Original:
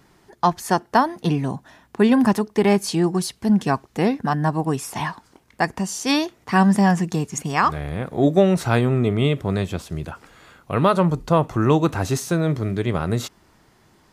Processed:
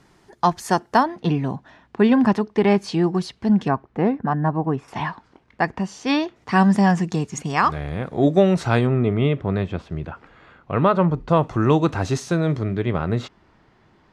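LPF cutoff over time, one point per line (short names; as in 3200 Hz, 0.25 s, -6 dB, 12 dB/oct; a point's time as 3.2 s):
9800 Hz
from 1.03 s 3900 Hz
from 3.68 s 1600 Hz
from 4.88 s 3300 Hz
from 6.36 s 6400 Hz
from 8.87 s 2600 Hz
from 11.29 s 5800 Hz
from 12.63 s 3200 Hz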